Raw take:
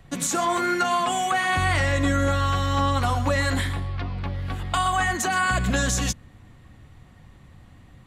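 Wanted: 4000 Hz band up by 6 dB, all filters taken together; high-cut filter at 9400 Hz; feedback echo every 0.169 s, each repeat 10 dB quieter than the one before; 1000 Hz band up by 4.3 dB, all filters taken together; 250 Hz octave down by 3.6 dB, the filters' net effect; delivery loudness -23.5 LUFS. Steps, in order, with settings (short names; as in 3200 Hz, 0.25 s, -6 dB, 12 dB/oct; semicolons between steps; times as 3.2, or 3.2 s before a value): LPF 9400 Hz; bell 250 Hz -5 dB; bell 1000 Hz +5.5 dB; bell 4000 Hz +7.5 dB; feedback echo 0.169 s, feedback 32%, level -10 dB; gain -3 dB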